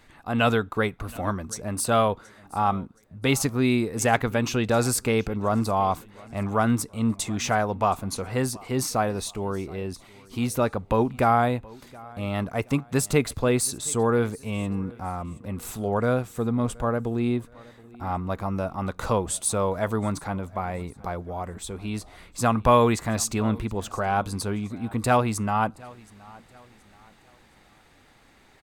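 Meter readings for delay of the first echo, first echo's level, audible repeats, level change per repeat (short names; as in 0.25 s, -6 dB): 0.723 s, -23.0 dB, 2, -8.5 dB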